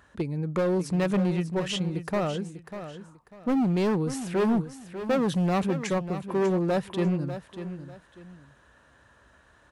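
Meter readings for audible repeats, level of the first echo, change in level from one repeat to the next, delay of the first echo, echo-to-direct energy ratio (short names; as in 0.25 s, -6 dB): 2, -11.0 dB, -11.0 dB, 0.595 s, -10.5 dB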